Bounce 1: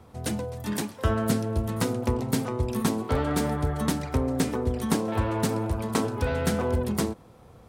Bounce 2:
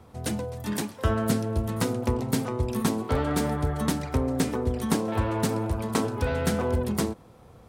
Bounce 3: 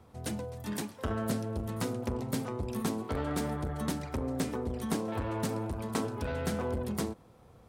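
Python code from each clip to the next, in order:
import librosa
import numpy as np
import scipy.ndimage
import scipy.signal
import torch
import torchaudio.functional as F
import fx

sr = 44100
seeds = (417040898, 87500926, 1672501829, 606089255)

y1 = x
y2 = fx.transformer_sat(y1, sr, knee_hz=370.0)
y2 = y2 * librosa.db_to_amplitude(-6.0)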